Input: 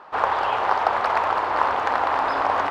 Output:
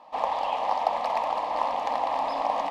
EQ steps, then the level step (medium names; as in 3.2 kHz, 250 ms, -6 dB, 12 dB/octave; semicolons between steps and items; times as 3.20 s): bass shelf 180 Hz -3.5 dB; static phaser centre 390 Hz, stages 6; -2.0 dB